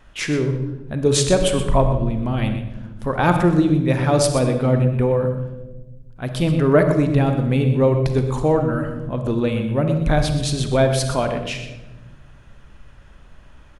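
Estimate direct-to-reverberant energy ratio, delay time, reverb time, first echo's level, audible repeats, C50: 5.5 dB, 124 ms, 1.1 s, −12.0 dB, 1, 6.5 dB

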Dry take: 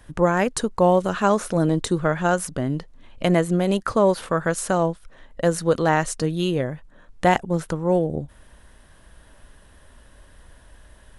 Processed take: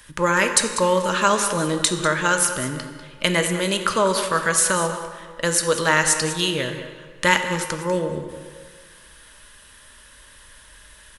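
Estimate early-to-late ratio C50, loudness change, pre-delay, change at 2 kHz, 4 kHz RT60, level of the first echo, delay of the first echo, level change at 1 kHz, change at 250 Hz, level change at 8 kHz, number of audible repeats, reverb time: 7.0 dB, +1.5 dB, 3 ms, +7.5 dB, 1.3 s, −13.0 dB, 195 ms, +1.5 dB, −4.0 dB, +12.0 dB, 1, 1.8 s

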